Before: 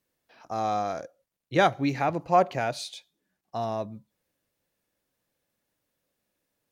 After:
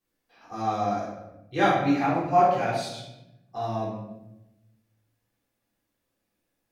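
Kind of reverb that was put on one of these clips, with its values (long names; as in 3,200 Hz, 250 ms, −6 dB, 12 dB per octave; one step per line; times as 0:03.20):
rectangular room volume 330 cubic metres, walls mixed, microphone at 3.7 metres
level −9.5 dB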